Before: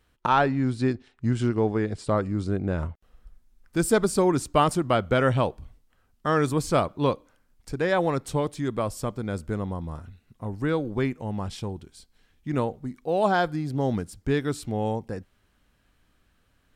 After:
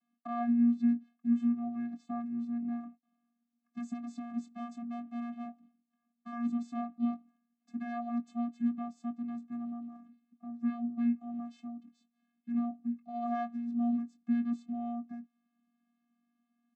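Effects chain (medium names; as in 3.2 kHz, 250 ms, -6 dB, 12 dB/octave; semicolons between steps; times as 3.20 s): peak limiter -14.5 dBFS, peak gain reduction 6.5 dB; 3.89–6.32 s: hard clipper -27 dBFS, distortion -12 dB; vocoder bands 16, square 237 Hz; doubling 21 ms -11 dB; trim -7.5 dB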